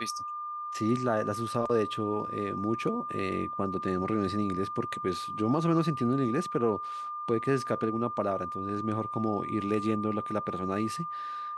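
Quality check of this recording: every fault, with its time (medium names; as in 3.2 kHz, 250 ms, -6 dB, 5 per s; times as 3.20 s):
whine 1.2 kHz -34 dBFS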